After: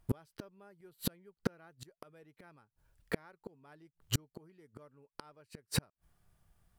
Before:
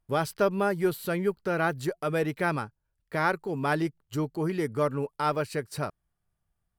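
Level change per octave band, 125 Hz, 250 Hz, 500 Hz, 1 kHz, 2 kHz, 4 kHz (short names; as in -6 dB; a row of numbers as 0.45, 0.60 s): -9.0, -13.0, -19.5, -24.0, -18.0, -2.0 dB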